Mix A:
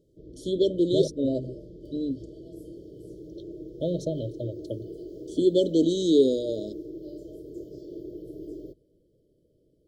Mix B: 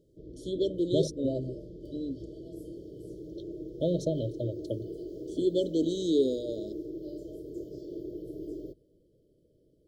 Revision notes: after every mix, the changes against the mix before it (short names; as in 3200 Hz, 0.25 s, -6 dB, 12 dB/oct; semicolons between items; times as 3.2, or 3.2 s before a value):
first voice -6.0 dB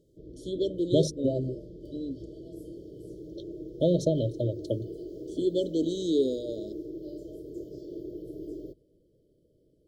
second voice +4.5 dB